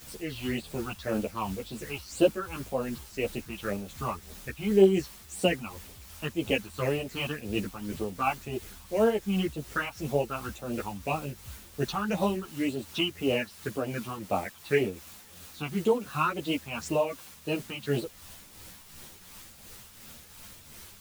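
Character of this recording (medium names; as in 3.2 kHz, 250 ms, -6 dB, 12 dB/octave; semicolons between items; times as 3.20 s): phasing stages 6, 1.9 Hz, lowest notch 460–1900 Hz; a quantiser's noise floor 8-bit, dither triangular; tremolo triangle 2.8 Hz, depth 55%; a shimmering, thickened sound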